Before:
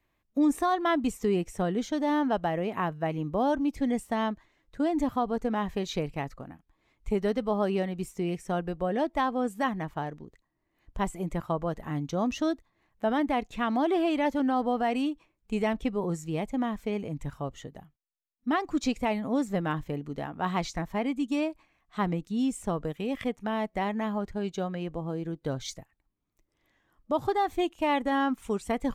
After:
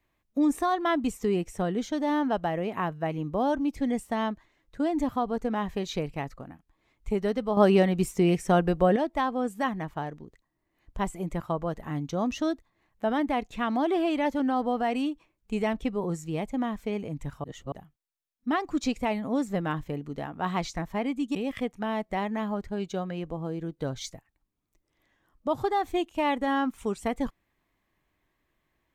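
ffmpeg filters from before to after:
-filter_complex "[0:a]asplit=6[s0][s1][s2][s3][s4][s5];[s0]atrim=end=7.572[s6];[s1]atrim=start=7.568:end=8.962,asetpts=PTS-STARTPTS,volume=2.51[s7];[s2]atrim=start=8.958:end=17.442[s8];[s3]atrim=start=17.438:end=17.722,asetpts=PTS-STARTPTS,areverse[s9];[s4]atrim=start=17.718:end=21.352[s10];[s5]atrim=start=22.988[s11];[s6][s7]acrossfade=d=0.004:c1=hsin:c2=hsin[s12];[s12][s8]acrossfade=d=0.004:c1=hsin:c2=hsin[s13];[s13][s9]acrossfade=d=0.004:c1=hsin:c2=hsin[s14];[s14][s10]acrossfade=d=0.004:c1=hsin:c2=hsin[s15];[s15][s11]acrossfade=d=0.004:c1=hsin:c2=hsin"

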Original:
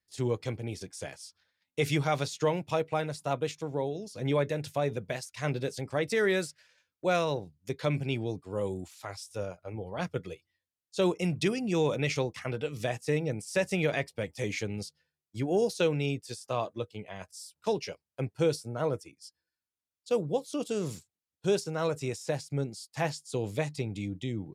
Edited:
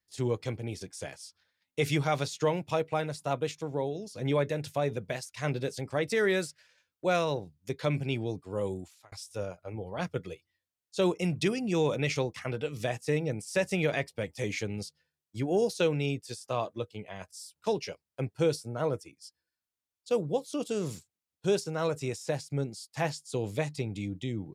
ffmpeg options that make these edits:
-filter_complex "[0:a]asplit=2[s0][s1];[s0]atrim=end=9.12,asetpts=PTS-STARTPTS,afade=t=out:st=8.73:d=0.39[s2];[s1]atrim=start=9.12,asetpts=PTS-STARTPTS,afade=t=in:d=0.004:c=hsin[s3];[s2][s3]concat=n=2:v=0:a=1"

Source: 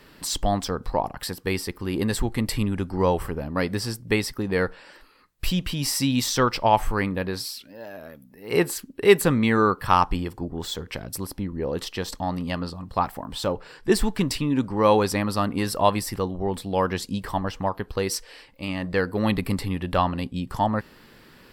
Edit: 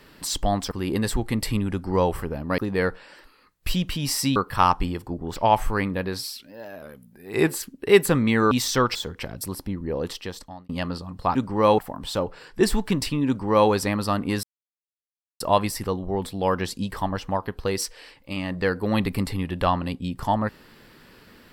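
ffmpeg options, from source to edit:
-filter_complex "[0:a]asplit=13[s0][s1][s2][s3][s4][s5][s6][s7][s8][s9][s10][s11][s12];[s0]atrim=end=0.712[s13];[s1]atrim=start=1.768:end=3.642[s14];[s2]atrim=start=4.348:end=6.132[s15];[s3]atrim=start=9.668:end=10.672[s16];[s4]atrim=start=6.568:end=8.034[s17];[s5]atrim=start=8.03:end=8.63,asetpts=PTS-STARTPTS,asetrate=40572,aresample=44100[s18];[s6]atrim=start=8.626:end=9.672[s19];[s7]atrim=start=6.128:end=6.572[s20];[s8]atrim=start=10.668:end=12.41,asetpts=PTS-STARTPTS,afade=t=out:st=1.072:d=0.67[s21];[s9]atrim=start=12.41:end=13.072,asetpts=PTS-STARTPTS,afade=t=in:d=0.004:c=hsin[s22];[s10]atrim=start=14.558:end=14.992[s23];[s11]atrim=start=13.068:end=15.72,asetpts=PTS-STARTPTS,afade=t=out:st=2.648:d=0.004:c=hsin,apad=pad_dur=0.97[s24];[s12]atrim=start=15.72,asetpts=PTS-STARTPTS,afade=t=in:d=0.004:c=hsin[s25];[s13][s14]acrossfade=d=0.004:c1=hsin:c2=hsin[s26];[s26][s15]acrossfade=d=0.004:c1=hsin:c2=hsin[s27];[s27][s16]acrossfade=d=0.004:c1=hsin:c2=hsin[s28];[s28][s17]acrossfade=d=0.004:c1=hsin:c2=hsin[s29];[s29][s18]acrossfade=d=0.004:c1=hsin:c2=hsin[s30];[s30][s19]acrossfade=d=0.004:c1=hsin:c2=hsin[s31];[s31][s20]acrossfade=d=0.004:c1=hsin:c2=hsin[s32];[s21][s22]concat=n=2:v=0:a=1[s33];[s32][s33]acrossfade=d=0.004:c1=hsin:c2=hsin[s34];[s34][s23]acrossfade=d=0.004:c1=hsin:c2=hsin[s35];[s24][s25]concat=n=2:v=0:a=1[s36];[s35][s36]acrossfade=d=0.004:c1=hsin:c2=hsin"

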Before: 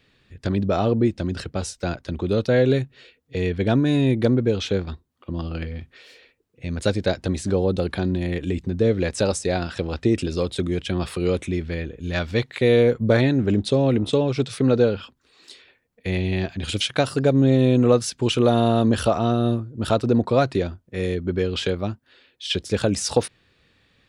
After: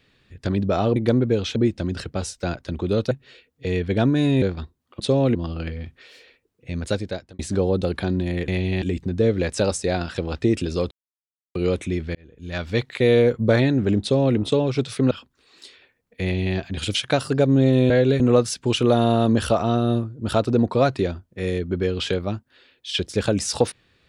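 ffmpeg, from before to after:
-filter_complex "[0:a]asplit=16[s0][s1][s2][s3][s4][s5][s6][s7][s8][s9][s10][s11][s12][s13][s14][s15];[s0]atrim=end=0.962[s16];[s1]atrim=start=4.118:end=4.722[s17];[s2]atrim=start=0.958:end=2.512[s18];[s3]atrim=start=2.808:end=4.122[s19];[s4]atrim=start=4.718:end=5.302[s20];[s5]atrim=start=13.628:end=13.982[s21];[s6]atrim=start=5.298:end=7.34,asetpts=PTS-STARTPTS,afade=t=out:st=1.422:d=0.62[s22];[s7]atrim=start=7.34:end=8.432,asetpts=PTS-STARTPTS,afade=t=in:d=0.004:c=hsin[s23];[s8]atrim=start=16.078:end=16.422[s24];[s9]atrim=start=8.428:end=10.52,asetpts=PTS-STARTPTS,afade=t=out:st=2.088:d=0.004:c=hsin[s25];[s10]atrim=start=10.52:end=11.16,asetpts=PTS-STARTPTS,volume=0[s26];[s11]atrim=start=11.16:end=11.76,asetpts=PTS-STARTPTS,afade=t=in:d=0.004:c=hsin,afade=t=out:st=0.596:d=0.004:c=hsin[s27];[s12]atrim=start=11.76:end=14.722,asetpts=PTS-STARTPTS,afade=t=in:d=0.64[s28];[s13]atrim=start=14.968:end=17.762[s29];[s14]atrim=start=2.508:end=2.812[s30];[s15]atrim=start=17.758[s31];[s16][s17]acrossfade=d=0.004:c1=hsin:c2=hsin[s32];[s32][s18]acrossfade=d=0.004:c1=hsin:c2=hsin[s33];[s33][s19]acrossfade=d=0.004:c1=hsin:c2=hsin[s34];[s34][s20]acrossfade=d=0.004:c1=hsin:c2=hsin[s35];[s35][s21]acrossfade=d=0.004:c1=hsin:c2=hsin[s36];[s22][s23]concat=n=2:v=0:a=1[s37];[s36][s37]acrossfade=d=0.004:c1=hsin:c2=hsin[s38];[s38][s24]acrossfade=d=0.004:c1=hsin:c2=hsin[s39];[s25][s26][s27][s28]concat=n=4:v=0:a=1[s40];[s39][s40]acrossfade=d=0.004:c1=hsin:c2=hsin[s41];[s41][s29]acrossfade=d=0.004:c1=hsin:c2=hsin[s42];[s42][s30]acrossfade=d=0.004:c1=hsin:c2=hsin[s43];[s43][s31]acrossfade=d=0.004:c1=hsin:c2=hsin"

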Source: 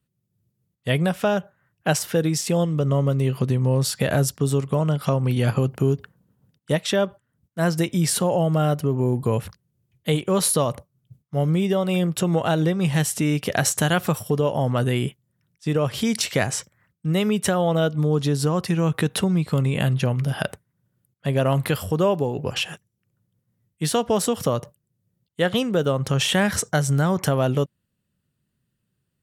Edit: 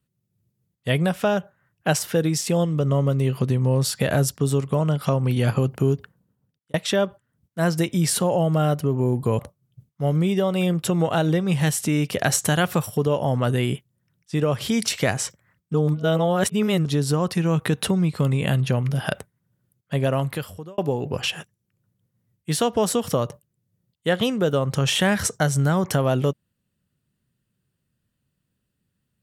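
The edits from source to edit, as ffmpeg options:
-filter_complex "[0:a]asplit=6[s0][s1][s2][s3][s4][s5];[s0]atrim=end=6.74,asetpts=PTS-STARTPTS,afade=t=out:st=5.94:d=0.8[s6];[s1]atrim=start=6.74:end=9.392,asetpts=PTS-STARTPTS,afade=t=in:d=0.004:c=hsin[s7];[s2]atrim=start=10.718:end=17.072[s8];[s3]atrim=start=17.068:end=18.182,asetpts=PTS-STARTPTS,areverse[s9];[s4]atrim=start=18.178:end=22.11,asetpts=PTS-STARTPTS,afade=t=out:st=3.122:d=0.81[s10];[s5]atrim=start=22.11,asetpts=PTS-STARTPTS,afade=t=in:d=0.004:c=hsin[s11];[s6][s7]concat=n=2:v=0:a=1[s12];[s12][s8]acrossfade=d=0.004:c1=hsin:c2=hsin[s13];[s13][s9]acrossfade=d=0.004:c1=hsin:c2=hsin[s14];[s10][s11]concat=n=2:v=0:a=1[s15];[s14][s15]acrossfade=d=0.004:c1=hsin:c2=hsin"

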